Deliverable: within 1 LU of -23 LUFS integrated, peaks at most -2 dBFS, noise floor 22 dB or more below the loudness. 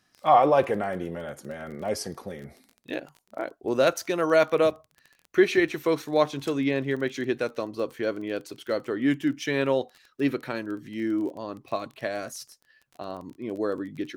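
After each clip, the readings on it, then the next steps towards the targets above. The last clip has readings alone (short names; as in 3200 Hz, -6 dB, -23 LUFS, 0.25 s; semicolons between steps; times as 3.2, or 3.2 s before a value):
ticks 22/s; loudness -26.5 LUFS; peak -7.0 dBFS; loudness target -23.0 LUFS
-> de-click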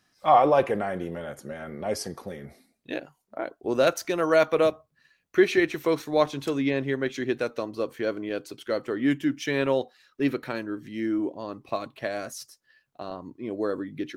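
ticks 0/s; loudness -26.5 LUFS; peak -7.0 dBFS; loudness target -23.0 LUFS
-> gain +3.5 dB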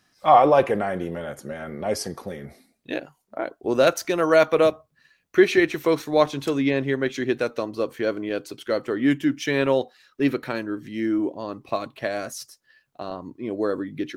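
loudness -23.0 LUFS; peak -3.5 dBFS; noise floor -69 dBFS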